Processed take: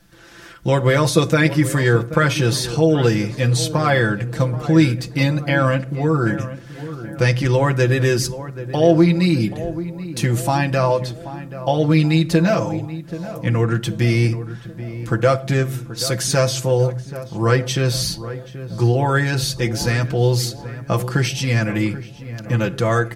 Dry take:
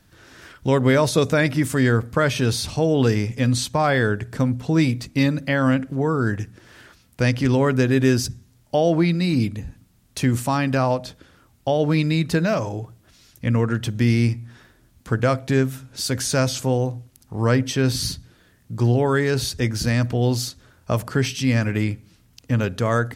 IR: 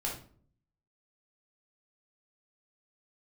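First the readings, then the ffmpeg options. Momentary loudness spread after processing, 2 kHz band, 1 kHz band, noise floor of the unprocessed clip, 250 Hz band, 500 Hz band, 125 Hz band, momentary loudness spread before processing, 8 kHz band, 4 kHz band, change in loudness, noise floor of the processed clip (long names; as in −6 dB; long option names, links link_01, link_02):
13 LU, +3.5 dB, +3.0 dB, −58 dBFS, +1.5 dB, +3.0 dB, +3.5 dB, 9 LU, +3.0 dB, +3.5 dB, +2.5 dB, −37 dBFS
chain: -filter_complex "[0:a]aecho=1:1:5.9:0.83,asplit=2[link_01][link_02];[link_02]adelay=781,lowpass=frequency=1500:poles=1,volume=-13dB,asplit=2[link_03][link_04];[link_04]adelay=781,lowpass=frequency=1500:poles=1,volume=0.54,asplit=2[link_05][link_06];[link_06]adelay=781,lowpass=frequency=1500:poles=1,volume=0.54,asplit=2[link_07][link_08];[link_08]adelay=781,lowpass=frequency=1500:poles=1,volume=0.54,asplit=2[link_09][link_10];[link_10]adelay=781,lowpass=frequency=1500:poles=1,volume=0.54,asplit=2[link_11][link_12];[link_12]adelay=781,lowpass=frequency=1500:poles=1,volume=0.54[link_13];[link_01][link_03][link_05][link_07][link_09][link_11][link_13]amix=inputs=7:normalize=0,asplit=2[link_14][link_15];[1:a]atrim=start_sample=2205[link_16];[link_15][link_16]afir=irnorm=-1:irlink=0,volume=-16.5dB[link_17];[link_14][link_17]amix=inputs=2:normalize=0"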